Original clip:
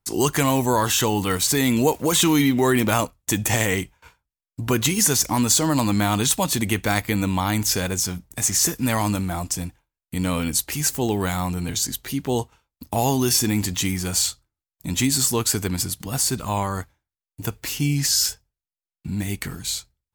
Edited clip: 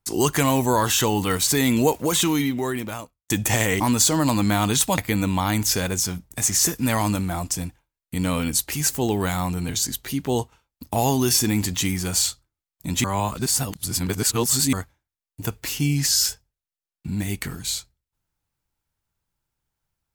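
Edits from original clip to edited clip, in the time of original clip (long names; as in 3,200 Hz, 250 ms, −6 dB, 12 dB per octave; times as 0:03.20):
0:01.85–0:03.30: fade out
0:03.80–0:05.30: remove
0:06.48–0:06.98: remove
0:15.04–0:16.73: reverse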